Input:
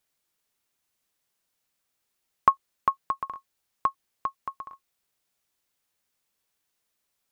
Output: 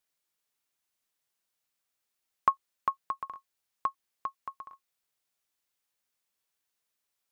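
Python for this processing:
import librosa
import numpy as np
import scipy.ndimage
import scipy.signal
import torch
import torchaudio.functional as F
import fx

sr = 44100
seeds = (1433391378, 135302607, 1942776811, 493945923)

y = fx.low_shelf(x, sr, hz=450.0, db=-5.0)
y = y * librosa.db_to_amplitude(-4.5)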